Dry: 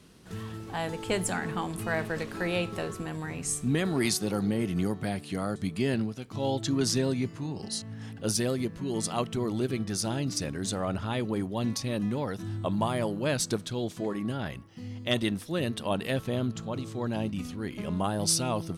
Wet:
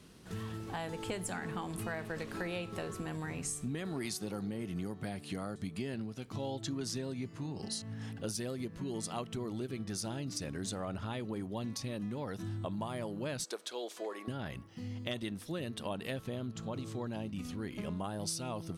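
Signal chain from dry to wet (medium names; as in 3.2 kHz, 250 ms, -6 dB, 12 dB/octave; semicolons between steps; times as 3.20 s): 13.44–14.28 s: high-pass 410 Hz 24 dB/octave; compression 5:1, threshold -34 dBFS, peak gain reduction 11.5 dB; trim -1.5 dB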